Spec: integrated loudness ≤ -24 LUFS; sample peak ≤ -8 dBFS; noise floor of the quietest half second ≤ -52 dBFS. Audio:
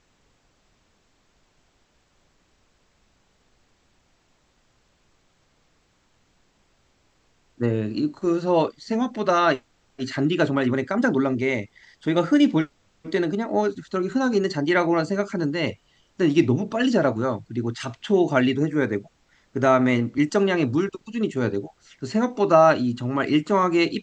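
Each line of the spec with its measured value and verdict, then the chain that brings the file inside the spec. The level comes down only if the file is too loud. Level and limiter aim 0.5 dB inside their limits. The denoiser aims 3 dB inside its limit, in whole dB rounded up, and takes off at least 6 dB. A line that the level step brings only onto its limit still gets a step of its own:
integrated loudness -22.5 LUFS: fail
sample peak -3.5 dBFS: fail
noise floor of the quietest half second -64 dBFS: pass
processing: trim -2 dB; peak limiter -8.5 dBFS

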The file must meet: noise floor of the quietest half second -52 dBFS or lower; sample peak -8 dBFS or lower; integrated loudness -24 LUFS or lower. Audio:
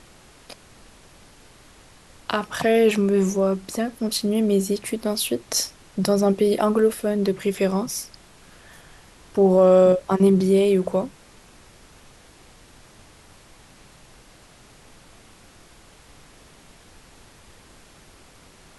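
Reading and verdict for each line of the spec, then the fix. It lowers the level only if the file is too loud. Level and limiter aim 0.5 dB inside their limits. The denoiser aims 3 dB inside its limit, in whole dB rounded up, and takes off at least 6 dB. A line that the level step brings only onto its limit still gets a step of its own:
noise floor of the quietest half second -50 dBFS: fail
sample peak -6.0 dBFS: fail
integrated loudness -20.5 LUFS: fail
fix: trim -4 dB

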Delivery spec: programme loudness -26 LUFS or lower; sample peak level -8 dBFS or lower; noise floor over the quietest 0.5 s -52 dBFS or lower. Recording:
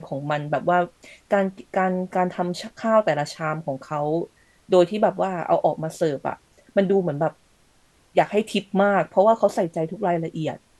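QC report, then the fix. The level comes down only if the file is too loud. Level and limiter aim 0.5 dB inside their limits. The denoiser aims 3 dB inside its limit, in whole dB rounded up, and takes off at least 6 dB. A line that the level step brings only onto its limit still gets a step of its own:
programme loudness -23.0 LUFS: fail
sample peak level -5.0 dBFS: fail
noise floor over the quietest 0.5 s -59 dBFS: pass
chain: trim -3.5 dB

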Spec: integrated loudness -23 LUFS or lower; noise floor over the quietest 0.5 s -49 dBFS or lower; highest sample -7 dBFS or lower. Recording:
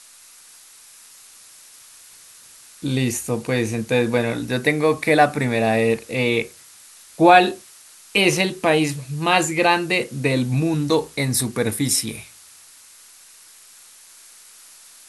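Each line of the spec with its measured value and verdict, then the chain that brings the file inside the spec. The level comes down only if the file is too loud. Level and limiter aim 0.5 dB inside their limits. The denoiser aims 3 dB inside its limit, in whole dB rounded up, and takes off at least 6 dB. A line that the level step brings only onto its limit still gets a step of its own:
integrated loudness -19.5 LUFS: fail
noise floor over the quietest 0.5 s -47 dBFS: fail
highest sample -1.5 dBFS: fail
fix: trim -4 dB; peak limiter -7.5 dBFS

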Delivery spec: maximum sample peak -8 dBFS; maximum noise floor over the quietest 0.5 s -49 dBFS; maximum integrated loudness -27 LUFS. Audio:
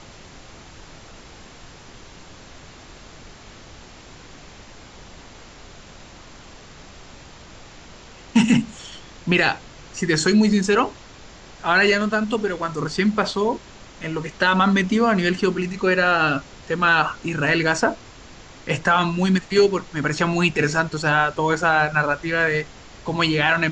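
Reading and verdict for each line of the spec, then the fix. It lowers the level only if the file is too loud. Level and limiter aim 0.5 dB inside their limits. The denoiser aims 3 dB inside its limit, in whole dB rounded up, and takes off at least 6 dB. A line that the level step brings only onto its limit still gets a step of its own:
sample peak -5.0 dBFS: fail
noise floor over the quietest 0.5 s -43 dBFS: fail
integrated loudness -20.0 LUFS: fail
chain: trim -7.5 dB

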